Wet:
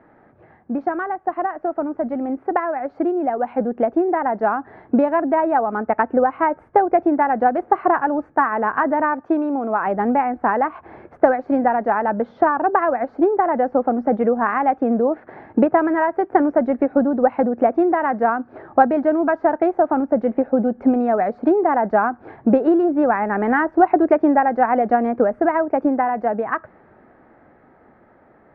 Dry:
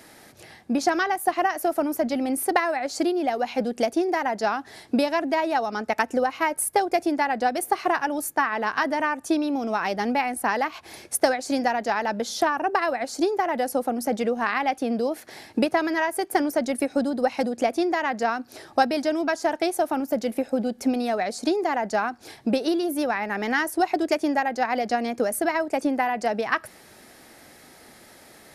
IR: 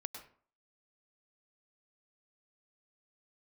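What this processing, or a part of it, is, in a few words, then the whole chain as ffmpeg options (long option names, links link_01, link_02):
action camera in a waterproof case: -filter_complex "[0:a]asettb=1/sr,asplit=3[link_01][link_02][link_03];[link_01]atrim=end=9.204[link_04];[link_02]atrim=start=9.2:end=9.87,asetpts=PTS-STARTPTS,afade=type=in:duration=0.004:curve=qsin,afade=type=out:start_time=0.666:duration=0.004:curve=qsin,lowshelf=frequency=210:gain=-9[link_05];[link_03]atrim=start=9.866[link_06];[link_04][link_05]acrossfade=duration=0.004:curve1=hsin:curve2=qsin[link_07];[link_07][link_06]acrossfade=duration=0.004:curve1=qsin:curve2=hsin,lowpass=frequency=1500:width=0.5412,lowpass=frequency=1500:width=1.3066,dynaudnorm=framelen=300:gausssize=21:maxgain=11.5dB" -ar 48000 -c:a aac -b:a 128k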